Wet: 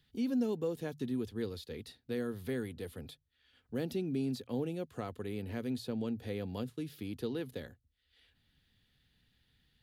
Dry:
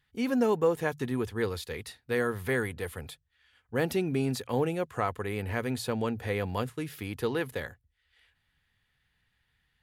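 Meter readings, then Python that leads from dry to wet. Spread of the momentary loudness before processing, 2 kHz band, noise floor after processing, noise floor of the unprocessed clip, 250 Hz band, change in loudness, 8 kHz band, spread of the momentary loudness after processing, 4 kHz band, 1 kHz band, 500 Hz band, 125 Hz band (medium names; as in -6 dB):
11 LU, -15.0 dB, -77 dBFS, -76 dBFS, -3.5 dB, -7.0 dB, -11.5 dB, 11 LU, -7.5 dB, -15.5 dB, -9.0 dB, -7.5 dB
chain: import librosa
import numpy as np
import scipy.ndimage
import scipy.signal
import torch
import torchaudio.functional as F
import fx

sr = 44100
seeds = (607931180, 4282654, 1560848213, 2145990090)

y = fx.graphic_eq(x, sr, hz=(250, 1000, 2000, 4000, 8000), db=(7, -8, -7, 6, -4))
y = fx.band_squash(y, sr, depth_pct=40)
y = y * librosa.db_to_amplitude(-9.0)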